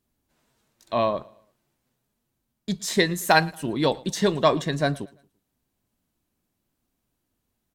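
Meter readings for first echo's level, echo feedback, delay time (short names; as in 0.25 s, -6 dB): -23.5 dB, 40%, 0.113 s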